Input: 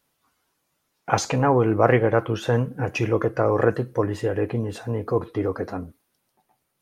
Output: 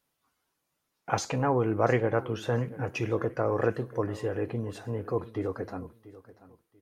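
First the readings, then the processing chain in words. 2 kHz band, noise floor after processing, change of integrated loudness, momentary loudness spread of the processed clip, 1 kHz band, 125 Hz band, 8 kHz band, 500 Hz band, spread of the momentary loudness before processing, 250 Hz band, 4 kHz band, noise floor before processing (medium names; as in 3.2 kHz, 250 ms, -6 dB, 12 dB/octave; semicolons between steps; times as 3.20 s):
-7.0 dB, -81 dBFS, -7.0 dB, 11 LU, -7.0 dB, -7.0 dB, -7.0 dB, -7.0 dB, 11 LU, -7.0 dB, -7.0 dB, -74 dBFS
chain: feedback delay 687 ms, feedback 24%, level -18 dB; trim -7 dB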